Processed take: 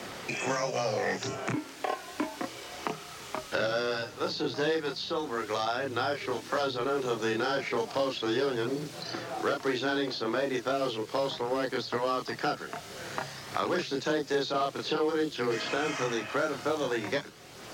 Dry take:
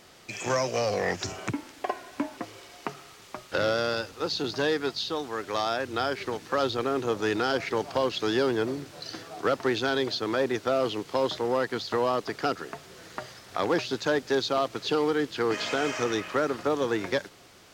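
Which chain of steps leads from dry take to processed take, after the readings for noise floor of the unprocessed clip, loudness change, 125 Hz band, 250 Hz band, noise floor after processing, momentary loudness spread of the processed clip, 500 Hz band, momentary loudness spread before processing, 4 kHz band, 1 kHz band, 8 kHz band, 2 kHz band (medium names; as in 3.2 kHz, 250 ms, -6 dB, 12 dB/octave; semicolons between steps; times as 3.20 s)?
-51 dBFS, -3.0 dB, -2.5 dB, -2.5 dB, -45 dBFS, 8 LU, -3.0 dB, 13 LU, -2.5 dB, -2.0 dB, -1.5 dB, -1.5 dB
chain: frequency shift +14 Hz; chorus voices 2, 0.17 Hz, delay 29 ms, depth 3.8 ms; three bands compressed up and down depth 70%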